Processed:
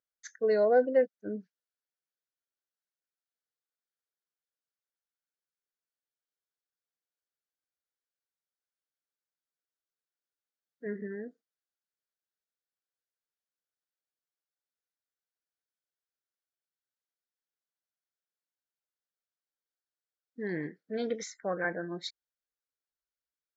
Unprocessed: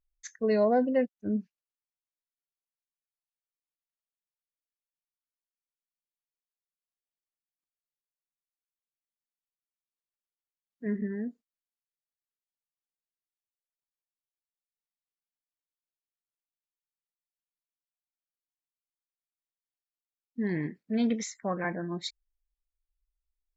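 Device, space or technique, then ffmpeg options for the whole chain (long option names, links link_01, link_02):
television speaker: -af "highpass=190,equalizer=frequency=230:width_type=q:width=4:gain=-9,equalizer=frequency=490:width_type=q:width=4:gain=6,equalizer=frequency=1000:width_type=q:width=4:gain=-7,equalizer=frequency=1500:width_type=q:width=4:gain=8,equalizer=frequency=2600:width_type=q:width=4:gain=-10,lowpass=frequency=6500:width=0.5412,lowpass=frequency=6500:width=1.3066,volume=-1.5dB"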